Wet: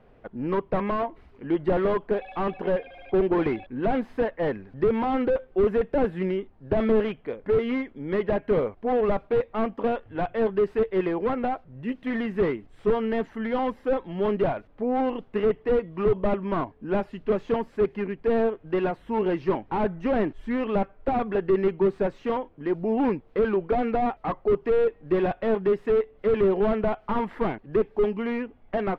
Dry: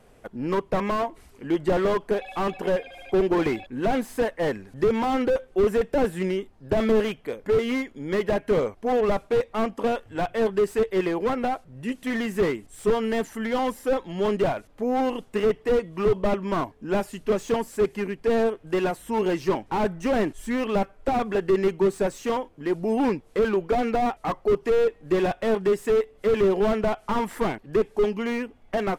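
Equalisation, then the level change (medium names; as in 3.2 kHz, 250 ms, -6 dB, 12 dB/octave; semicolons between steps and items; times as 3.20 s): distance through air 350 m; 0.0 dB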